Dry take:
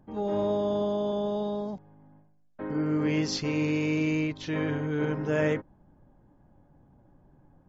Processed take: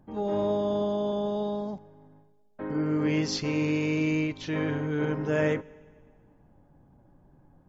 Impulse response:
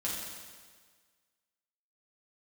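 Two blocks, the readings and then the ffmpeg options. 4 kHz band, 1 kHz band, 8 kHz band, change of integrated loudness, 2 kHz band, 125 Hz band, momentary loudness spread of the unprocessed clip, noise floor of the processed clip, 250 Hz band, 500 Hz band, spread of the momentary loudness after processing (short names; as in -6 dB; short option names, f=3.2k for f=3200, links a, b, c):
+0.5 dB, +0.5 dB, n/a, +0.5 dB, +0.5 dB, +0.5 dB, 7 LU, -61 dBFS, +0.5 dB, +0.5 dB, 7 LU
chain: -filter_complex "[0:a]asplit=2[a][b];[1:a]atrim=start_sample=2205,asetrate=37485,aresample=44100[c];[b][c]afir=irnorm=-1:irlink=0,volume=-25dB[d];[a][d]amix=inputs=2:normalize=0"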